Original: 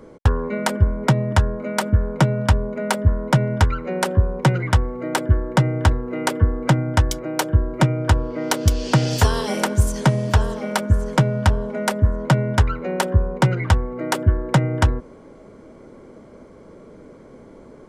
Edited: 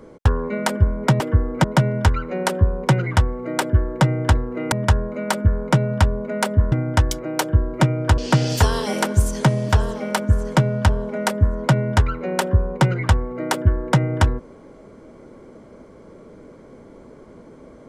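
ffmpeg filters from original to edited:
-filter_complex "[0:a]asplit=6[a][b][c][d][e][f];[a]atrim=end=1.202[g];[b]atrim=start=6.278:end=6.722[h];[c]atrim=start=3.198:end=6.282[i];[d]atrim=start=1.198:end=3.202[j];[e]atrim=start=6.718:end=8.182[k];[f]atrim=start=8.788[l];[g][h]acrossfade=d=0.004:c1=hsin:c2=hsin[m];[m][i]acrossfade=d=0.004:c1=hsin:c2=hsin[n];[n][j]acrossfade=d=0.004:c1=hsin:c2=hsin[o];[o][k]acrossfade=d=0.004:c1=hsin:c2=hsin[p];[p][l]acrossfade=d=0.004:c1=hsin:c2=hsin"

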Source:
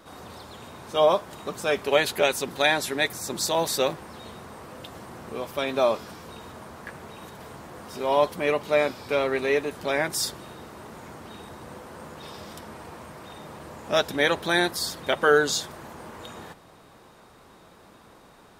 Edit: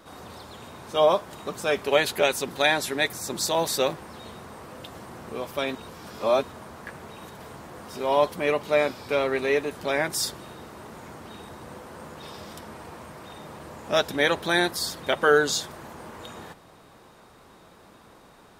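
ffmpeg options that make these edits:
-filter_complex "[0:a]asplit=3[a][b][c];[a]atrim=end=5.752[d];[b]atrim=start=5.748:end=6.432,asetpts=PTS-STARTPTS,areverse[e];[c]atrim=start=6.428[f];[d][e]acrossfade=d=0.004:c1=hsin:c2=hsin[g];[g][f]acrossfade=d=0.004:c1=hsin:c2=hsin"

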